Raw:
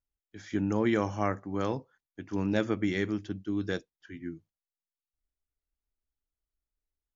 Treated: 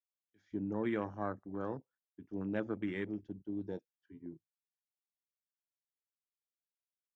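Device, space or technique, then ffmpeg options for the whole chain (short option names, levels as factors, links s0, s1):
over-cleaned archive recording: -af "highpass=110,lowpass=5100,afwtdn=0.0178,volume=0.398"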